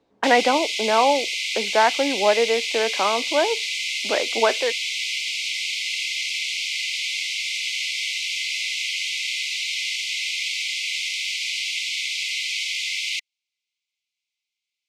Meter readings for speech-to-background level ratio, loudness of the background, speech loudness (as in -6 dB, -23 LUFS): 2.0 dB, -24.0 LUFS, -22.0 LUFS